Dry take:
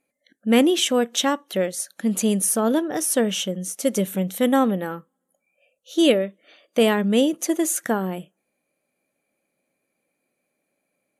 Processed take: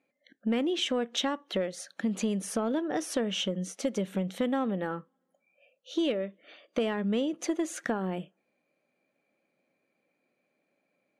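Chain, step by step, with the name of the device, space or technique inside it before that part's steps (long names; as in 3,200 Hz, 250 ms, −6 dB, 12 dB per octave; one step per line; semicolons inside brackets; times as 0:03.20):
AM radio (band-pass filter 120–4,200 Hz; downward compressor 5 to 1, threshold −26 dBFS, peak gain reduction 13 dB; soft clipping −16 dBFS, distortion −27 dB)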